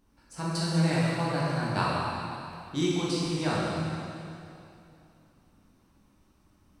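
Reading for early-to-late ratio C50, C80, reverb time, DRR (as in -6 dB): -3.5 dB, -1.5 dB, 2.7 s, -8.0 dB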